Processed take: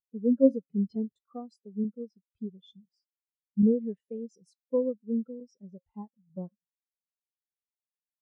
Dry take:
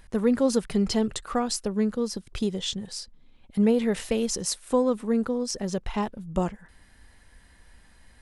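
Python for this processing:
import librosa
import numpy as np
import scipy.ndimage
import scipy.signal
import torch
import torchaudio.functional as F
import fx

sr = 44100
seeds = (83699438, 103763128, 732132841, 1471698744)

y = scipy.signal.sosfilt(scipy.signal.butter(2, 74.0, 'highpass', fs=sr, output='sos'), x)
y = fx.comb_fb(y, sr, f0_hz=270.0, decay_s=0.34, harmonics='all', damping=0.0, mix_pct=50)
y = fx.buffer_crackle(y, sr, first_s=0.95, period_s=0.89, block=128, kind='repeat')
y = fx.spectral_expand(y, sr, expansion=2.5)
y = y * 10.0 ** (5.5 / 20.0)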